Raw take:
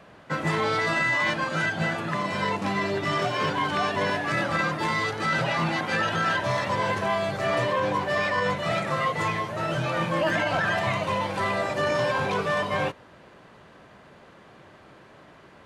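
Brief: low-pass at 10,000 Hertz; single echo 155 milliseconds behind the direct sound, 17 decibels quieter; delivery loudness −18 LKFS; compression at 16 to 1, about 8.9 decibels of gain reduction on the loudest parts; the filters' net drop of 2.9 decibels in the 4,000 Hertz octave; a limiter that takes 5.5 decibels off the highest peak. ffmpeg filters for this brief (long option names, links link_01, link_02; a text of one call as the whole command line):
ffmpeg -i in.wav -af "lowpass=10000,equalizer=frequency=4000:width_type=o:gain=-4,acompressor=threshold=-30dB:ratio=16,alimiter=level_in=2.5dB:limit=-24dB:level=0:latency=1,volume=-2.5dB,aecho=1:1:155:0.141,volume=17dB" out.wav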